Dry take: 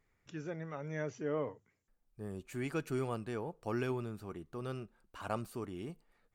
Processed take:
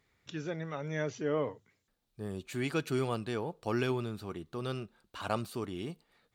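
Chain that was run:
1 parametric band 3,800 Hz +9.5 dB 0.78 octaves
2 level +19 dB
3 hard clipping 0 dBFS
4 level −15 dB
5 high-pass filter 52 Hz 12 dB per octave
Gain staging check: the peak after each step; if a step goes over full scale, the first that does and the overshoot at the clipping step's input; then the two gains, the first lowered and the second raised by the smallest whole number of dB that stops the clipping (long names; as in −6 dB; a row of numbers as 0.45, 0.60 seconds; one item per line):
−21.0, −2.0, −2.0, −17.0, −16.5 dBFS
no step passes full scale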